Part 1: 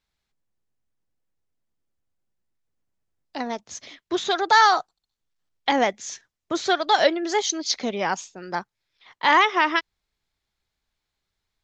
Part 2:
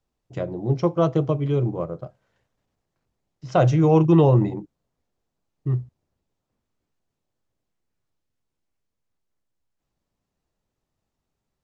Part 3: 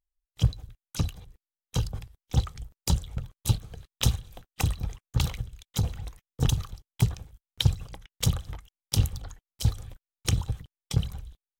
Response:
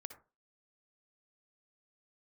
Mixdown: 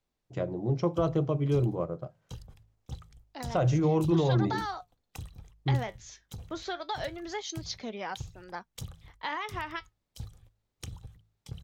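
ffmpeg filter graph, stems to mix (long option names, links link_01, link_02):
-filter_complex "[0:a]lowpass=6100,flanger=delay=3.2:depth=7.2:regen=68:speed=0.24:shape=triangular,volume=-6.5dB[link_01];[1:a]alimiter=limit=-14dB:level=0:latency=1:release=36,volume=-4dB[link_02];[2:a]agate=range=-14dB:threshold=-40dB:ratio=16:detection=peak,adelay=550,volume=-15.5dB[link_03];[link_01][link_03]amix=inputs=2:normalize=0,acompressor=threshold=-31dB:ratio=6,volume=0dB[link_04];[link_02][link_04]amix=inputs=2:normalize=0,bandreject=frequency=53.15:width_type=h:width=4,bandreject=frequency=106.3:width_type=h:width=4,bandreject=frequency=159.45:width_type=h:width=4"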